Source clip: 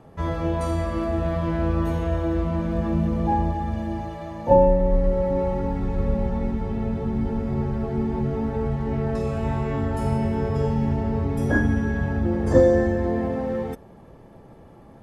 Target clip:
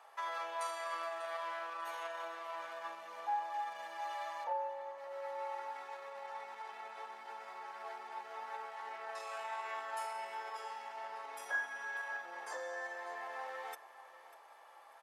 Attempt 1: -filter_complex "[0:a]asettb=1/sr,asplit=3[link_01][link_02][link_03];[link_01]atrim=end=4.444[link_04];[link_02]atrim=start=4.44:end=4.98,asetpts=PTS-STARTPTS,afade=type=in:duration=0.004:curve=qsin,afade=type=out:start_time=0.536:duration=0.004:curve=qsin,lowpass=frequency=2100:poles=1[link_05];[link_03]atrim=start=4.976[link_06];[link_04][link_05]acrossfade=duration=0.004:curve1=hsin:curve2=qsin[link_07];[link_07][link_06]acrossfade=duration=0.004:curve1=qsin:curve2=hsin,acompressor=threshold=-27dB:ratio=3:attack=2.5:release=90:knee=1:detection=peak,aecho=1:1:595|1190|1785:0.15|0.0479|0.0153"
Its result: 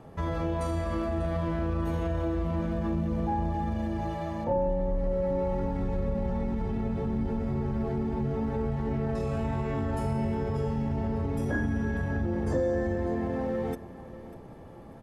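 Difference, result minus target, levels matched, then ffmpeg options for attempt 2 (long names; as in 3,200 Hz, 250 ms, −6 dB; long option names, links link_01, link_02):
1,000 Hz band −9.5 dB
-filter_complex "[0:a]asettb=1/sr,asplit=3[link_01][link_02][link_03];[link_01]atrim=end=4.444[link_04];[link_02]atrim=start=4.44:end=4.98,asetpts=PTS-STARTPTS,afade=type=in:duration=0.004:curve=qsin,afade=type=out:start_time=0.536:duration=0.004:curve=qsin,lowpass=frequency=2100:poles=1[link_05];[link_03]atrim=start=4.976[link_06];[link_04][link_05]acrossfade=duration=0.004:curve1=hsin:curve2=qsin[link_07];[link_07][link_06]acrossfade=duration=0.004:curve1=qsin:curve2=hsin,acompressor=threshold=-27dB:ratio=3:attack=2.5:release=90:knee=1:detection=peak,highpass=frequency=850:width=0.5412,highpass=frequency=850:width=1.3066,aecho=1:1:595|1190|1785:0.15|0.0479|0.0153"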